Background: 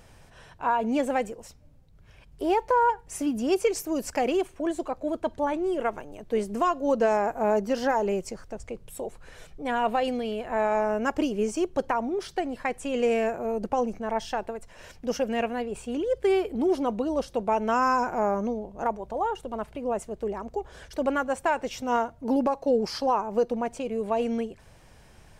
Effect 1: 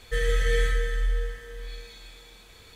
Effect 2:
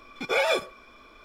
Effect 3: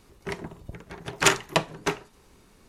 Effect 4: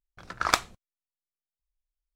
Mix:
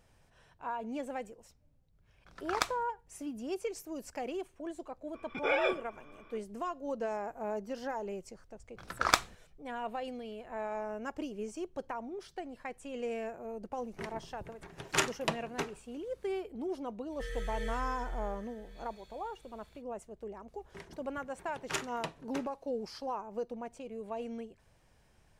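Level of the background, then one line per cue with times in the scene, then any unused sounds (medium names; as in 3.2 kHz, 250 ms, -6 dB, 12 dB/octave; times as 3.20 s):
background -13 dB
2.08 s: add 4 -11 dB + level rider
5.14 s: add 2 -5.5 dB + Savitzky-Golay filter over 25 samples
8.60 s: add 4 -2.5 dB
13.72 s: add 3 -9.5 dB
17.08 s: add 1 -15 dB, fades 0.05 s
20.48 s: add 3 -16 dB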